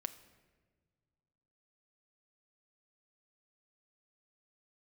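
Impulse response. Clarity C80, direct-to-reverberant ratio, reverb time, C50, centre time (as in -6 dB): 15.5 dB, 9.5 dB, not exponential, 14.0 dB, 7 ms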